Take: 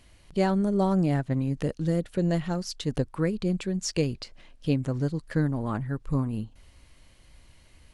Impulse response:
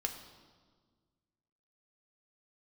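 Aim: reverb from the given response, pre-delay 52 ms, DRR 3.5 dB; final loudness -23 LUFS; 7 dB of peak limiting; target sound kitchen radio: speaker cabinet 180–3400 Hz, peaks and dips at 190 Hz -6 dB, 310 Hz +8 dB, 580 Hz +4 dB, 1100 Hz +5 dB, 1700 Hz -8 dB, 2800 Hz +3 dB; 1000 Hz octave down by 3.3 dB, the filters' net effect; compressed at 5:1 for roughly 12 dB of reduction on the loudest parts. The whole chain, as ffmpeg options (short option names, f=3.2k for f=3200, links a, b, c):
-filter_complex "[0:a]equalizer=f=1k:t=o:g=-7,acompressor=threshold=-34dB:ratio=5,alimiter=level_in=6dB:limit=-24dB:level=0:latency=1,volume=-6dB,asplit=2[a][b];[1:a]atrim=start_sample=2205,adelay=52[c];[b][c]afir=irnorm=-1:irlink=0,volume=-4.5dB[d];[a][d]amix=inputs=2:normalize=0,highpass=180,equalizer=f=190:t=q:w=4:g=-6,equalizer=f=310:t=q:w=4:g=8,equalizer=f=580:t=q:w=4:g=4,equalizer=f=1.1k:t=q:w=4:g=5,equalizer=f=1.7k:t=q:w=4:g=-8,equalizer=f=2.8k:t=q:w=4:g=3,lowpass=f=3.4k:w=0.5412,lowpass=f=3.4k:w=1.3066,volume=17dB"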